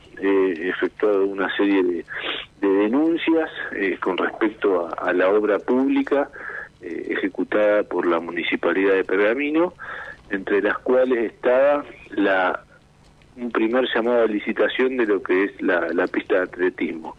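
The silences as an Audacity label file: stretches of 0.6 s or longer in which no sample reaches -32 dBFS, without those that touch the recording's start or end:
12.580000	13.390000	silence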